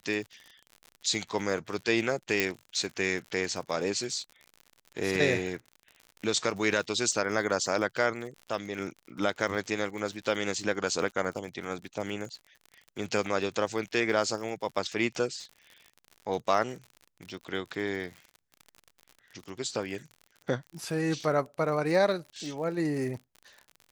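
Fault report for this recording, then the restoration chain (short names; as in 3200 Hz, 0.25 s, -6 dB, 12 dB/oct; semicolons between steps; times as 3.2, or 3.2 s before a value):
crackle 56/s -38 dBFS
2.4 pop -9 dBFS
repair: de-click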